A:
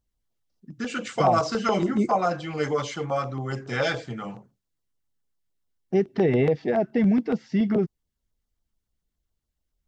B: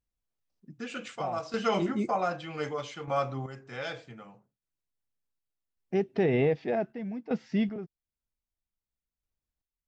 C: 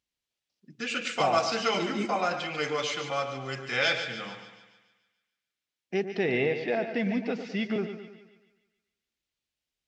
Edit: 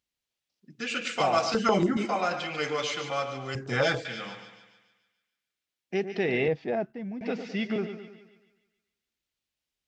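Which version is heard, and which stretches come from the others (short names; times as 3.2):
C
1.54–1.97 from A
3.55–4.05 from A
6.48–7.21 from B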